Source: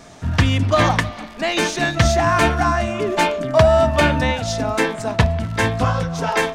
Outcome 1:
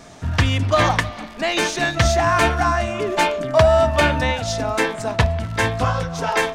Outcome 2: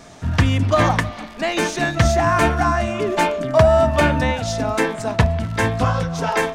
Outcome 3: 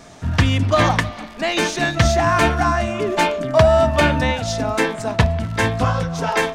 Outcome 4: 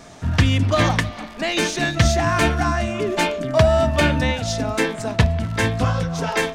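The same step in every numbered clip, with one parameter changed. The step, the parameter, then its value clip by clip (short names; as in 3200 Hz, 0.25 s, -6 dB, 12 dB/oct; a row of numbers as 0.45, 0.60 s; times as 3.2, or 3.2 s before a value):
dynamic EQ, frequency: 200, 3800, 9600, 940 Hz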